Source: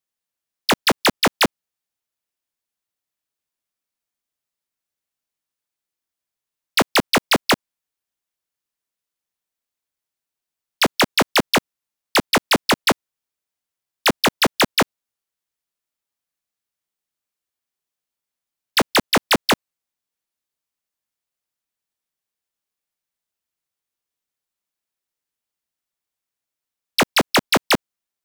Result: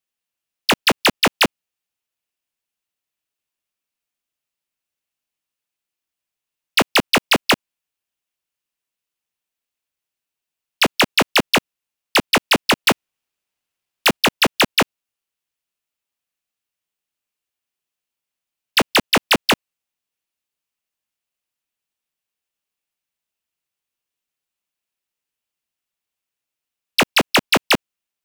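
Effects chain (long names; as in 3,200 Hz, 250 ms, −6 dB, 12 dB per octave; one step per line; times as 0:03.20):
0:12.84–0:14.17: each half-wave held at its own peak
parametric band 2,700 Hz +6 dB 0.47 octaves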